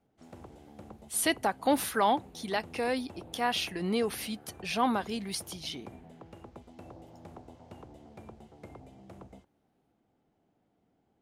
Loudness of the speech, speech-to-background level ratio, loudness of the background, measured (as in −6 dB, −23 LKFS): −31.0 LKFS, 20.0 dB, −51.0 LKFS